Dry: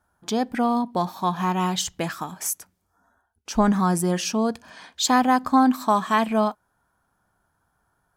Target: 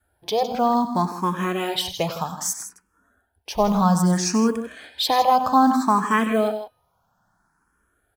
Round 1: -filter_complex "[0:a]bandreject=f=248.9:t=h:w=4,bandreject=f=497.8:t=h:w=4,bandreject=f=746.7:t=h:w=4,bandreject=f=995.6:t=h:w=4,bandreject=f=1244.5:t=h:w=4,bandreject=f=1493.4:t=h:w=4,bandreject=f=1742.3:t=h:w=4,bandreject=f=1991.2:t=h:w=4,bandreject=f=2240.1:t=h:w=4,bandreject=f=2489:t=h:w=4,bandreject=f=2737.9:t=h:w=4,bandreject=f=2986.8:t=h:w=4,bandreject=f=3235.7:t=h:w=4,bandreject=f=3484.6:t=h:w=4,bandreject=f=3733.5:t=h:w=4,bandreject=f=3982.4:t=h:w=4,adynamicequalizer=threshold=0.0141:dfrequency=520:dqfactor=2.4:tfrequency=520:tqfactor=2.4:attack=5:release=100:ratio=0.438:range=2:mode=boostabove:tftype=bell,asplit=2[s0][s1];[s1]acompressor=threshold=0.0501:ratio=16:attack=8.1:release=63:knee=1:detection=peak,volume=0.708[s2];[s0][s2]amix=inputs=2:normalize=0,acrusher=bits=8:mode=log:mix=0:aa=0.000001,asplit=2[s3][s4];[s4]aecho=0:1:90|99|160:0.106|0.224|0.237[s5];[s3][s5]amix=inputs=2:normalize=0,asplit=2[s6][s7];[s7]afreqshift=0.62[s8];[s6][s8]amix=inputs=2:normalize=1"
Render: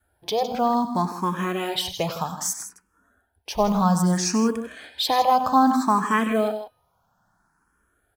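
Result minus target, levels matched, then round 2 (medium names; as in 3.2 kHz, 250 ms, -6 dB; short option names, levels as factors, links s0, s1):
compression: peak gain reduction +6 dB
-filter_complex "[0:a]bandreject=f=248.9:t=h:w=4,bandreject=f=497.8:t=h:w=4,bandreject=f=746.7:t=h:w=4,bandreject=f=995.6:t=h:w=4,bandreject=f=1244.5:t=h:w=4,bandreject=f=1493.4:t=h:w=4,bandreject=f=1742.3:t=h:w=4,bandreject=f=1991.2:t=h:w=4,bandreject=f=2240.1:t=h:w=4,bandreject=f=2489:t=h:w=4,bandreject=f=2737.9:t=h:w=4,bandreject=f=2986.8:t=h:w=4,bandreject=f=3235.7:t=h:w=4,bandreject=f=3484.6:t=h:w=4,bandreject=f=3733.5:t=h:w=4,bandreject=f=3982.4:t=h:w=4,adynamicequalizer=threshold=0.0141:dfrequency=520:dqfactor=2.4:tfrequency=520:tqfactor=2.4:attack=5:release=100:ratio=0.438:range=2:mode=boostabove:tftype=bell,asplit=2[s0][s1];[s1]acompressor=threshold=0.106:ratio=16:attack=8.1:release=63:knee=1:detection=peak,volume=0.708[s2];[s0][s2]amix=inputs=2:normalize=0,acrusher=bits=8:mode=log:mix=0:aa=0.000001,asplit=2[s3][s4];[s4]aecho=0:1:90|99|160:0.106|0.224|0.237[s5];[s3][s5]amix=inputs=2:normalize=0,asplit=2[s6][s7];[s7]afreqshift=0.62[s8];[s6][s8]amix=inputs=2:normalize=1"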